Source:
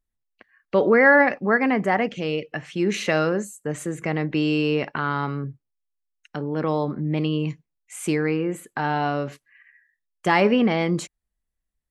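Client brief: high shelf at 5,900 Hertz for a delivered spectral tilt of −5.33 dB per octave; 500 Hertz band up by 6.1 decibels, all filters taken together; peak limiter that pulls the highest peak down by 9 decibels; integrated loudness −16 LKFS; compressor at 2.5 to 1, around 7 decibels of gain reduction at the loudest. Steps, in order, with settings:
parametric band 500 Hz +7 dB
high-shelf EQ 5,900 Hz +6.5 dB
downward compressor 2.5 to 1, threshold −18 dBFS
level +10.5 dB
brickwall limiter −5.5 dBFS

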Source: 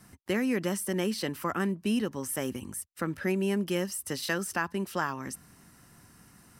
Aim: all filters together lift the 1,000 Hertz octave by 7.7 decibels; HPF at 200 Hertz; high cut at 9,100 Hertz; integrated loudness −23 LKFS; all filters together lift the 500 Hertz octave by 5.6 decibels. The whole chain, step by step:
high-pass filter 200 Hz
low-pass filter 9,100 Hz
parametric band 500 Hz +6 dB
parametric band 1,000 Hz +8 dB
level +5.5 dB

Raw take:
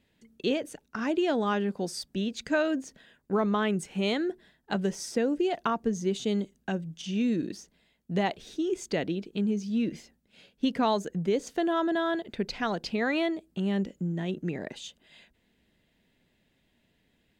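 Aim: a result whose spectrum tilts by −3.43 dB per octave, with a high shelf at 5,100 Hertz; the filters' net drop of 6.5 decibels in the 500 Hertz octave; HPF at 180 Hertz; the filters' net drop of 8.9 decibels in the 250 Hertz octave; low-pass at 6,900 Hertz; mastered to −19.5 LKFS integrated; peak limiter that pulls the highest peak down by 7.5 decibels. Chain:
high-pass filter 180 Hz
low-pass filter 6,900 Hz
parametric band 250 Hz −8.5 dB
parametric band 500 Hz −6 dB
high-shelf EQ 5,100 Hz +7.5 dB
level +16.5 dB
brickwall limiter −6.5 dBFS

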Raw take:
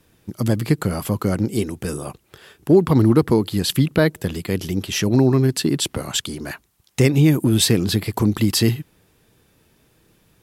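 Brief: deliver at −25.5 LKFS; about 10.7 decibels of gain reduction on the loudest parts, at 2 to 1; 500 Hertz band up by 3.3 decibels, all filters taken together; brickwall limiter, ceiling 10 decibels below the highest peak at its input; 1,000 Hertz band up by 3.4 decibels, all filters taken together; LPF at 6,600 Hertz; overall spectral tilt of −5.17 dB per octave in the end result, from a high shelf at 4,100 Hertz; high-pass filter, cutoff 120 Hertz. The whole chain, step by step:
high-pass filter 120 Hz
low-pass filter 6,600 Hz
parametric band 500 Hz +4 dB
parametric band 1,000 Hz +3.5 dB
high-shelf EQ 4,100 Hz −6 dB
downward compressor 2 to 1, threshold −27 dBFS
level +5 dB
brickwall limiter −14.5 dBFS

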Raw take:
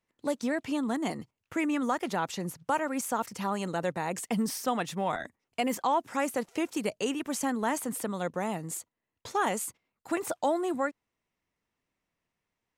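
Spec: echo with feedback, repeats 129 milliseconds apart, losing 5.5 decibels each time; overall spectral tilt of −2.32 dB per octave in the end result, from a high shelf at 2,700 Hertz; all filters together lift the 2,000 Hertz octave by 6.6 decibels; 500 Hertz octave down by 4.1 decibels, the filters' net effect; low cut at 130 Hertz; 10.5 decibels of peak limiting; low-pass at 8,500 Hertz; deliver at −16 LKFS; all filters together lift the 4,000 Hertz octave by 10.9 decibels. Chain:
high-pass filter 130 Hz
low-pass filter 8,500 Hz
parametric band 500 Hz −6 dB
parametric band 2,000 Hz +4 dB
high-shelf EQ 2,700 Hz +6.5 dB
parametric band 4,000 Hz +8 dB
brickwall limiter −22 dBFS
repeating echo 129 ms, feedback 53%, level −5.5 dB
level +15.5 dB

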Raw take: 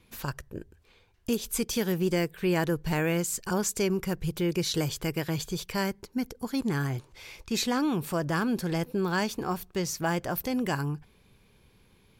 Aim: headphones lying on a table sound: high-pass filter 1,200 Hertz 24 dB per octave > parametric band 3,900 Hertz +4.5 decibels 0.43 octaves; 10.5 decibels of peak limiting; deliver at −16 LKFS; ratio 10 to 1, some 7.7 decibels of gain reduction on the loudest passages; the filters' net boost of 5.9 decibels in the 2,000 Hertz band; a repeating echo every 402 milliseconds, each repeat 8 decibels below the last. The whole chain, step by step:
parametric band 2,000 Hz +7.5 dB
downward compressor 10 to 1, threshold −29 dBFS
brickwall limiter −29 dBFS
high-pass filter 1,200 Hz 24 dB per octave
parametric band 3,900 Hz +4.5 dB 0.43 octaves
repeating echo 402 ms, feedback 40%, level −8 dB
level +25 dB

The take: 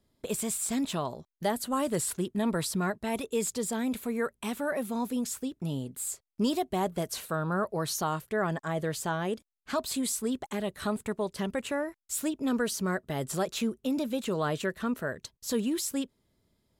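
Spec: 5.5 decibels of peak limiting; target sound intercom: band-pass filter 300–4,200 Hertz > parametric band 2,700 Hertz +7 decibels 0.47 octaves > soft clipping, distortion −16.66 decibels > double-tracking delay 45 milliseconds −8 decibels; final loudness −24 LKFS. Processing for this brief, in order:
brickwall limiter −23.5 dBFS
band-pass filter 300–4,200 Hz
parametric band 2,700 Hz +7 dB 0.47 octaves
soft clipping −26.5 dBFS
double-tracking delay 45 ms −8 dB
level +13 dB

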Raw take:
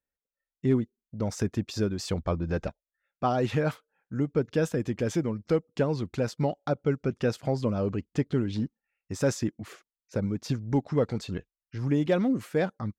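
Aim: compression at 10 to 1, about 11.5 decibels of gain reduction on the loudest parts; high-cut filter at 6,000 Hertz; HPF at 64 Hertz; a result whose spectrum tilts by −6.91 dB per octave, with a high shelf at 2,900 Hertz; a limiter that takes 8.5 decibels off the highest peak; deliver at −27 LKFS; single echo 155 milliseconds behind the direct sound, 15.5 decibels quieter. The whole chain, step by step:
high-pass filter 64 Hz
low-pass filter 6,000 Hz
high-shelf EQ 2,900 Hz −4.5 dB
downward compressor 10 to 1, threshold −32 dBFS
brickwall limiter −29.5 dBFS
single-tap delay 155 ms −15.5 dB
level +13.5 dB

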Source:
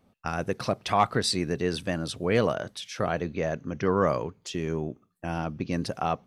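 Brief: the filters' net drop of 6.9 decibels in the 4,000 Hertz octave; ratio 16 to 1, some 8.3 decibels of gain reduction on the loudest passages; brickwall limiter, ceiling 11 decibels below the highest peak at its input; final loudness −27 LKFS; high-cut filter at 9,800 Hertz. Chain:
low-pass filter 9,800 Hz
parametric band 4,000 Hz −8.5 dB
downward compressor 16 to 1, threshold −26 dBFS
level +10 dB
brickwall limiter −14 dBFS

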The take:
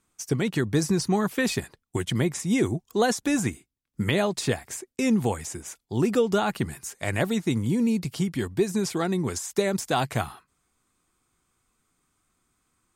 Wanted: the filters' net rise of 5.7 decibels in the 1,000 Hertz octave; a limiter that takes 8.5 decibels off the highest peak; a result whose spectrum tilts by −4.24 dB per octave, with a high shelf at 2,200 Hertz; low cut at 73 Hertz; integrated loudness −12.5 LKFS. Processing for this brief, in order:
high-pass filter 73 Hz
parametric band 1,000 Hz +7 dB
high-shelf EQ 2,200 Hz +5 dB
level +13.5 dB
brickwall limiter 0 dBFS

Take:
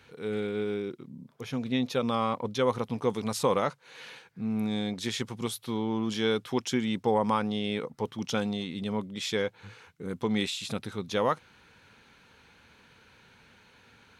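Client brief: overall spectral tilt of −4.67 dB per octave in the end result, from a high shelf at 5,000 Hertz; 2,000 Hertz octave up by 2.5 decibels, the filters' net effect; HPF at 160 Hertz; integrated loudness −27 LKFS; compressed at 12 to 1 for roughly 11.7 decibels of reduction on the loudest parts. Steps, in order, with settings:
high-pass filter 160 Hz
parametric band 2,000 Hz +4.5 dB
high-shelf EQ 5,000 Hz −8.5 dB
downward compressor 12 to 1, threshold −32 dBFS
level +11 dB

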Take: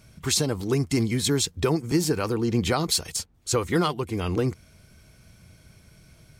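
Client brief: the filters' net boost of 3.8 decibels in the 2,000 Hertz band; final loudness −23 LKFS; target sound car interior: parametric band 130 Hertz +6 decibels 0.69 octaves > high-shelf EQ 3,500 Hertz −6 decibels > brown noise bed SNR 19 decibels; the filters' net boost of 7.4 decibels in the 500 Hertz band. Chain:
parametric band 130 Hz +6 dB 0.69 octaves
parametric band 500 Hz +9 dB
parametric band 2,000 Hz +6 dB
high-shelf EQ 3,500 Hz −6 dB
brown noise bed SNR 19 dB
level −2 dB

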